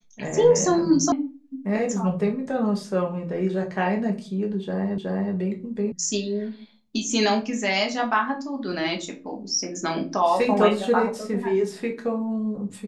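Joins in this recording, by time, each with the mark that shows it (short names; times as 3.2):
1.12 sound cut off
4.98 repeat of the last 0.37 s
5.92 sound cut off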